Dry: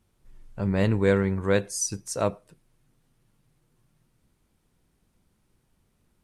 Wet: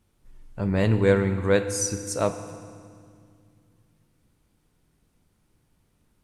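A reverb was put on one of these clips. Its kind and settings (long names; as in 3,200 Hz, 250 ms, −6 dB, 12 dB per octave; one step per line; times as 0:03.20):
feedback delay network reverb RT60 2.1 s, low-frequency decay 1.6×, high-frequency decay 0.9×, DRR 8.5 dB
level +1 dB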